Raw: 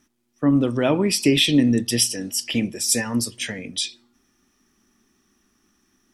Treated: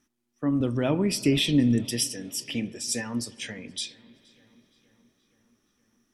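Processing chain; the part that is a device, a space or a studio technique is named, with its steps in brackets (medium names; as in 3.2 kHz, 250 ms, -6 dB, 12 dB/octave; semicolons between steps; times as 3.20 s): dub delay into a spring reverb (filtered feedback delay 472 ms, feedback 63%, low-pass 3.9 kHz, level -24 dB; spring tank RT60 3.9 s, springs 54 ms, chirp 40 ms, DRR 20 dB); 0.60–1.91 s: bass shelf 170 Hz +10.5 dB; 2.54–3.77 s: low-pass 9.1 kHz 12 dB/octave; trim -7.5 dB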